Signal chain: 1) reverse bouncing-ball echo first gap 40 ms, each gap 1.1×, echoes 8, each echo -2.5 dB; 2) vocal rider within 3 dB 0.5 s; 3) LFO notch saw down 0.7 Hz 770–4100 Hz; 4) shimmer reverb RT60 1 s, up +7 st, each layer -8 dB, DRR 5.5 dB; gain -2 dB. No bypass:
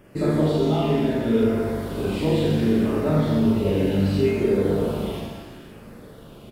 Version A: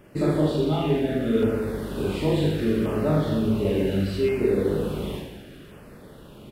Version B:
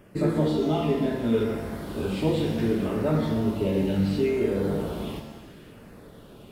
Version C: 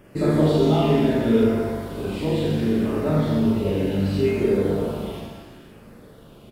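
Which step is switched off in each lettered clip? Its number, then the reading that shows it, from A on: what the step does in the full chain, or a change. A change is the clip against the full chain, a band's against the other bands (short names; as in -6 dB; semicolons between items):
4, loudness change -2.5 LU; 1, loudness change -4.0 LU; 2, crest factor change +2.0 dB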